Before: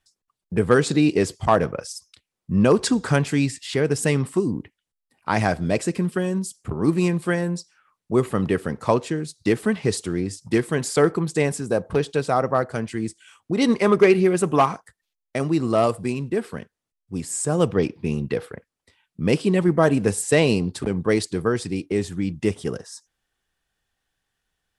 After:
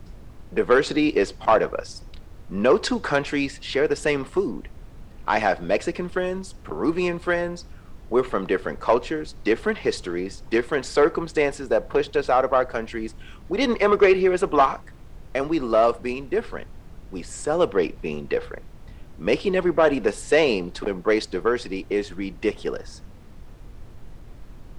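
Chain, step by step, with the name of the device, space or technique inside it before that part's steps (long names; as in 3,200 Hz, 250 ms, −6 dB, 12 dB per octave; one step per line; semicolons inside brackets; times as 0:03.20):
aircraft cabin announcement (band-pass filter 440–4,200 Hz; soft clipping −11.5 dBFS, distortion −18 dB; brown noise bed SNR 17 dB)
low-shelf EQ 490 Hz +3 dB
level +3 dB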